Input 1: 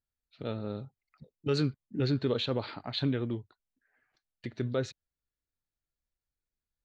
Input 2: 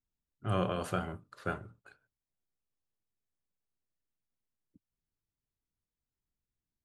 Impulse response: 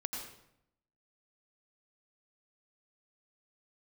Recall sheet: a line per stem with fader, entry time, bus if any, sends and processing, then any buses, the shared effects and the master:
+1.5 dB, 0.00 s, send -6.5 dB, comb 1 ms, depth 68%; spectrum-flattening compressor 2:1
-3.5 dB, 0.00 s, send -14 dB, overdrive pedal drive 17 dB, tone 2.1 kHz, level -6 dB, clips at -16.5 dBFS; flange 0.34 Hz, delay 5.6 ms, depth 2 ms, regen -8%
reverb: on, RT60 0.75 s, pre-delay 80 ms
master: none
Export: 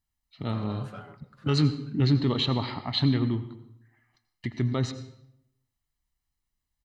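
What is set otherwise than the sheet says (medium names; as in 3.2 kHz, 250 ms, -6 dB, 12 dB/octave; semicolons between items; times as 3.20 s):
stem 1: missing spectrum-flattening compressor 2:1; stem 2 -3.5 dB -> -12.5 dB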